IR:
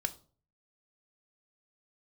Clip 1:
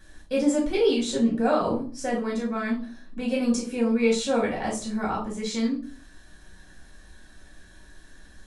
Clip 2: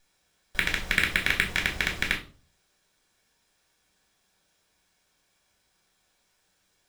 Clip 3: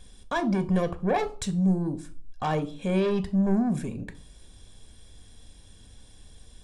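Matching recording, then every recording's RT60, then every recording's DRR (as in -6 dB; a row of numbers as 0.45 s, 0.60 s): 3; 0.40 s, 0.40 s, 0.40 s; -4.5 dB, 0.5 dB, 9.0 dB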